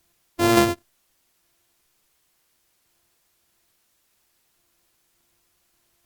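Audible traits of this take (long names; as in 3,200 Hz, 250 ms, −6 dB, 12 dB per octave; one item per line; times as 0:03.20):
a buzz of ramps at a fixed pitch in blocks of 128 samples
sample-and-hold tremolo, depth 70%
a quantiser's noise floor 12 bits, dither triangular
Opus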